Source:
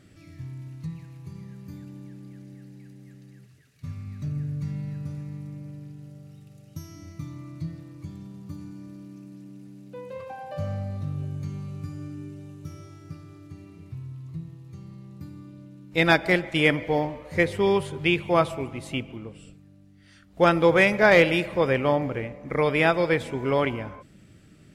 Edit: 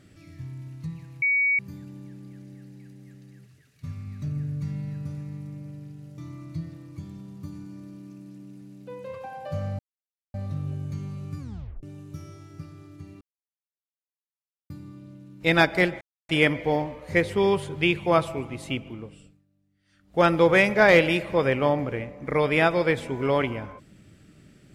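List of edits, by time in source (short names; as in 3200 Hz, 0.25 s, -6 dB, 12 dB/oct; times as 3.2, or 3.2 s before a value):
1.22–1.59 bleep 2250 Hz -19 dBFS
6.18–7.24 cut
10.85 insert silence 0.55 s
11.9 tape stop 0.44 s
13.72–15.21 mute
16.52 insert silence 0.28 s
19.26–20.5 dip -16.5 dB, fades 0.42 s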